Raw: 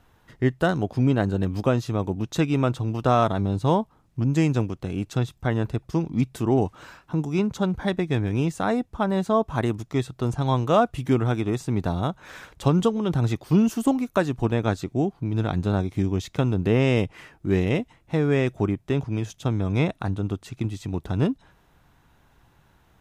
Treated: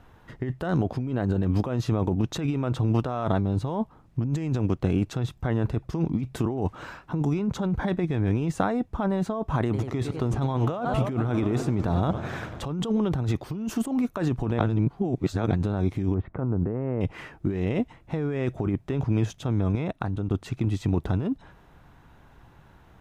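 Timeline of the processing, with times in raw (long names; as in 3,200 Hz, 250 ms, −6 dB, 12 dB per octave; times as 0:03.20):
0:09.59–0:12.65: feedback echo with a swinging delay time 96 ms, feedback 79%, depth 215 cents, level −17 dB
0:14.59–0:15.51: reverse
0:16.14–0:17.01: low-pass filter 1,500 Hz 24 dB per octave
0:19.75–0:20.31: output level in coarse steps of 17 dB
whole clip: high-shelf EQ 3,300 Hz −10 dB; compressor whose output falls as the input rises −27 dBFS, ratio −1; level +2 dB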